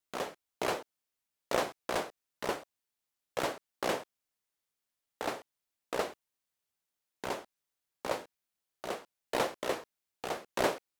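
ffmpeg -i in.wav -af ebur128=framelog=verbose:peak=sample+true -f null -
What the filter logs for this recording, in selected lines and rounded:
Integrated loudness:
  I:         -37.0 LUFS
  Threshold: -47.4 LUFS
Loudness range:
  LRA:         5.1 LU
  Threshold: -59.5 LUFS
  LRA low:   -42.4 LUFS
  LRA high:  -37.2 LUFS
Sample peak:
  Peak:      -14.1 dBFS
True peak:
  Peak:      -14.1 dBFS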